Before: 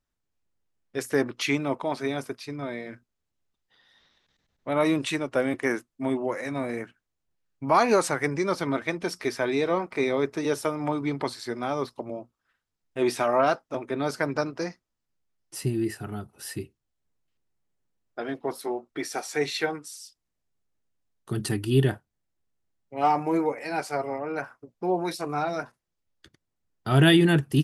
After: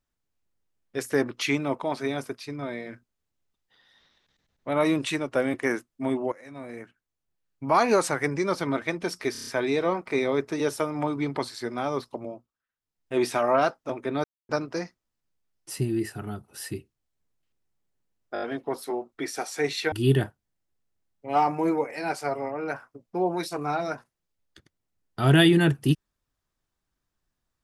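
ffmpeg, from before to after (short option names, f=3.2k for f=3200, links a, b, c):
-filter_complex "[0:a]asplit=16[a][b][c][d][e][f][g][h][i][j][k][l][m][n][o][p];[a]atrim=end=6.32,asetpts=PTS-STARTPTS,afade=t=out:st=6.316:d=0.004:c=hsin:silence=0.125893[q];[b]atrim=start=6.32:end=9.352,asetpts=PTS-STARTPTS,afade=t=in:d=1.97:c=qsin:silence=0.125893[r];[c]atrim=start=9.318:end=9.352[s];[d]atrim=start=9.318:end=9.352[t];[e]atrim=start=9.318:end=9.352[u];[f]atrim=start=9.318:end=9.352[v];[g]atrim=start=9.318:end=12.51,asetpts=PTS-STARTPTS,afade=t=out:st=2.732:d=0.46:silence=0.1[w];[h]atrim=start=12.51:end=12.52,asetpts=PTS-STARTPTS,volume=-20dB[x];[i]atrim=start=12.52:end=14.09,asetpts=PTS-STARTPTS,afade=t=in:d=0.46:silence=0.1,afade=t=out:st=1.566:d=0.004:c=hsin[y];[j]atrim=start=14.09:end=14.34,asetpts=PTS-STARTPTS,volume=0[z];[k]atrim=start=14.34:end=18.212,asetpts=PTS-STARTPTS,afade=t=in:d=0.004:c=hsin[aa];[l]atrim=start=18.188:end=18.212[ab];[m]atrim=start=18.188:end=18.212[ac];[n]atrim=start=18.188:end=18.212[ad];[o]atrim=start=18.188:end=19.692[ae];[p]atrim=start=21.598[af];[q][r]concat=n=2:v=0:a=1[ag];[ag][s]acrossfade=d=0.004:c1=hsin:c2=hsin[ah];[ah][t]acrossfade=d=0.004:c1=hsin:c2=hsin[ai];[ai][u]acrossfade=d=0.004:c1=hsin:c2=hsin[aj];[aj][v]acrossfade=d=0.004:c1=hsin:c2=hsin[ak];[w][x][y][z][aa]concat=n=5:v=0:a=1[al];[ak][al]acrossfade=d=0.004:c1=hsin:c2=hsin[am];[am][ab]acrossfade=d=0.004:c1=hsin:c2=hsin[an];[an][ac]acrossfade=d=0.004:c1=hsin:c2=hsin[ao];[ao][ad]acrossfade=d=0.004:c1=hsin:c2=hsin[ap];[ap][ae]acrossfade=d=0.004:c1=hsin:c2=hsin[aq];[aq][af]acrossfade=d=0.004:c1=hsin:c2=hsin"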